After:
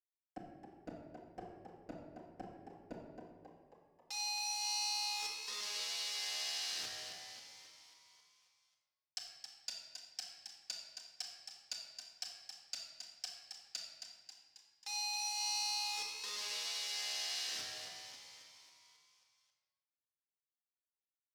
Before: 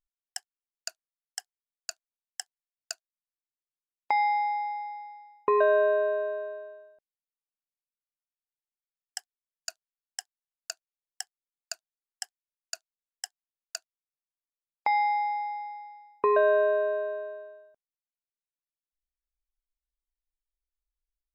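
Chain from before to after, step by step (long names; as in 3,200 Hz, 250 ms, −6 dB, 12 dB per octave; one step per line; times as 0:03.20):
treble cut that deepens with the level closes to 880 Hz, closed at −23.5 dBFS
noise gate with hold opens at −54 dBFS
downward compressor 10 to 1, threshold −35 dBFS, peak gain reduction 15 dB
comparator with hysteresis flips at −47.5 dBFS
band-pass filter sweep 350 Hz → 5,000 Hz, 0:03.20–0:03.93
transient designer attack −1 dB, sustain +8 dB
echo with shifted repeats 270 ms, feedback 58%, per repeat +68 Hz, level −7.5 dB
rectangular room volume 1,300 cubic metres, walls mixed, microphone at 2 metres
level +14.5 dB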